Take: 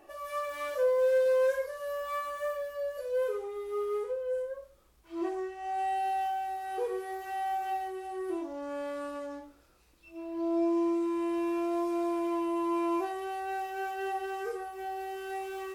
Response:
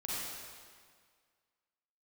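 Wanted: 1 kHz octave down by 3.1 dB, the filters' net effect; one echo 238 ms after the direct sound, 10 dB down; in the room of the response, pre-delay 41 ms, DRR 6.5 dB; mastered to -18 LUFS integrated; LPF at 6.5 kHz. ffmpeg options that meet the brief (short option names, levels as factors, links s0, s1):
-filter_complex "[0:a]lowpass=6500,equalizer=f=1000:t=o:g=-4.5,aecho=1:1:238:0.316,asplit=2[s0][s1];[1:a]atrim=start_sample=2205,adelay=41[s2];[s1][s2]afir=irnorm=-1:irlink=0,volume=0.316[s3];[s0][s3]amix=inputs=2:normalize=0,volume=5.31"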